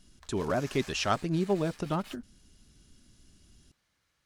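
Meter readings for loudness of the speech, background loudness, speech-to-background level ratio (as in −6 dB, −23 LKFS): −31.0 LKFS, −49.5 LKFS, 18.5 dB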